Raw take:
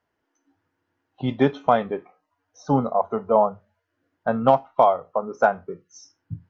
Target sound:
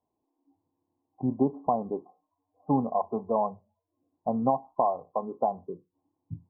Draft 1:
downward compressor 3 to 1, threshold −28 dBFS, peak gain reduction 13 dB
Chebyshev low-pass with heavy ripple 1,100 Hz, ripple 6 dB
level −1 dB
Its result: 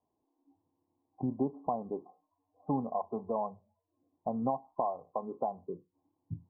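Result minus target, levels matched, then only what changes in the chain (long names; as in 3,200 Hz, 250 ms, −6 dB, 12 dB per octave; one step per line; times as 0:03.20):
downward compressor: peak gain reduction +7.5 dB
change: downward compressor 3 to 1, threshold −17 dBFS, peak gain reduction 5.5 dB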